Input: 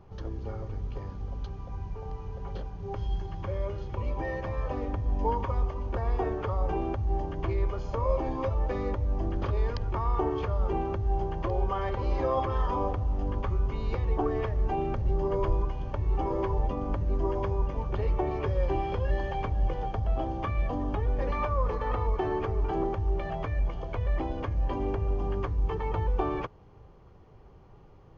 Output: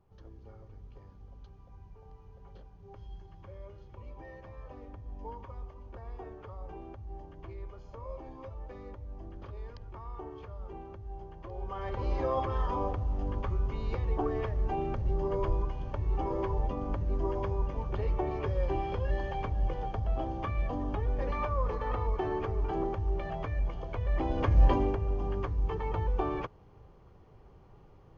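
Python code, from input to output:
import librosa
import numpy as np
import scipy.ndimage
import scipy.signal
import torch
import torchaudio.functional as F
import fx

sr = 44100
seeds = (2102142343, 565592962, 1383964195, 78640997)

y = fx.gain(x, sr, db=fx.line((11.42, -15.0), (12.01, -3.0), (24.05, -3.0), (24.64, 8.0), (24.99, -2.5)))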